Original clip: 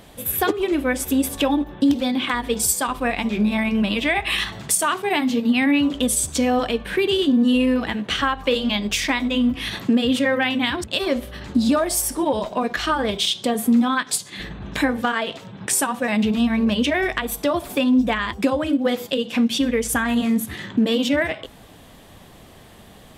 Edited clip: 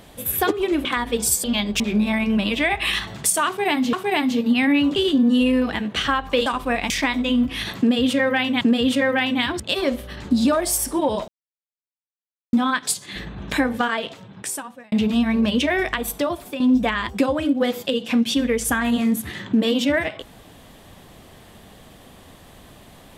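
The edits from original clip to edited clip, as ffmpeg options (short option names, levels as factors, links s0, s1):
-filter_complex "[0:a]asplit=13[s0][s1][s2][s3][s4][s5][s6][s7][s8][s9][s10][s11][s12];[s0]atrim=end=0.852[s13];[s1]atrim=start=2.218:end=2.812[s14];[s2]atrim=start=8.598:end=8.962[s15];[s3]atrim=start=3.248:end=5.382[s16];[s4]atrim=start=4.918:end=5.952[s17];[s5]atrim=start=7.098:end=8.602[s18];[s6]atrim=start=2.808:end=3.252[s19];[s7]atrim=start=8.958:end=10.672[s20];[s8]atrim=start=9.848:end=12.52,asetpts=PTS-STARTPTS,afade=t=out:st=2.668:d=0.004:c=hsin[s21];[s9]atrim=start=12.52:end=13.77,asetpts=PTS-STARTPTS,volume=0[s22];[s10]atrim=start=13.77:end=16.16,asetpts=PTS-STARTPTS,afade=t=in:d=0.004:c=hsin,afade=t=out:st=1.35:d=1.04[s23];[s11]atrim=start=16.16:end=17.84,asetpts=PTS-STARTPTS,afade=t=in:d=0.004:c=hsin,afade=t=out:st=1.19:d=0.49:silence=0.281838[s24];[s12]atrim=start=17.84,asetpts=PTS-STARTPTS,afade=t=in:d=0.004:c=hsin:silence=0.281838[s25];[s13][s14]acrossfade=d=0.004:c1=hsin:c2=hsin[s26];[s26][s15]acrossfade=d=0.004:c1=hsin:c2=hsin[s27];[s27][s16]acrossfade=d=0.004:c1=hsin:c2=hsin[s28];[s28][s17]acrossfade=d=0.004:c1=hsin:c2=hsin[s29];[s29][s18]acrossfade=d=0.004:c1=hsin:c2=hsin[s30];[s30][s19]acrossfade=d=0.004:c1=hsin:c2=hsin[s31];[s31][s20]acrossfade=d=0.004:c1=hsin:c2=hsin[s32];[s21][s22][s23][s24][s25]concat=n=5:v=0:a=1[s33];[s32][s33]acrossfade=d=0.004:c1=hsin:c2=hsin"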